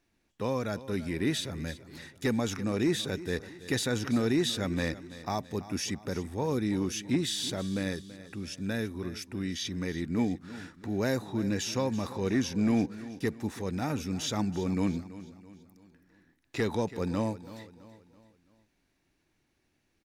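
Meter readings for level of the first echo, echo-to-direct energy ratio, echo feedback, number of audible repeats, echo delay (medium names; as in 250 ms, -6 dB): -16.0 dB, -15.0 dB, 44%, 3, 331 ms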